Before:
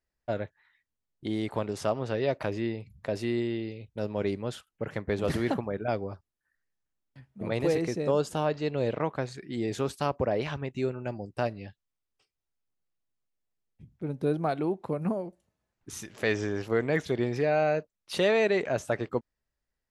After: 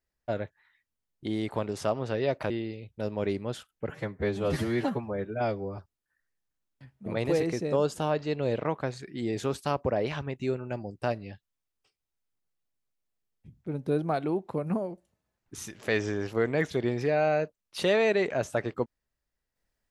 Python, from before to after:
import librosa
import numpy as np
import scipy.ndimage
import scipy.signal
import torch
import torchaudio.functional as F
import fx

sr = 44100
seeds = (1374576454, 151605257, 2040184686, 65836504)

y = fx.edit(x, sr, fx.cut(start_s=2.5, length_s=0.98),
    fx.stretch_span(start_s=4.87, length_s=1.26, factor=1.5), tone=tone)